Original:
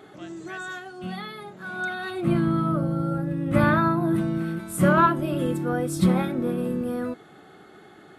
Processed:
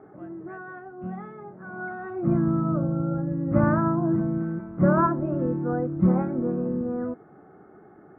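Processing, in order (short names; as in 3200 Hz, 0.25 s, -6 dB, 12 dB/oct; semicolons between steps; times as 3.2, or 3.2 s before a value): Bessel low-pass 1000 Hz, order 6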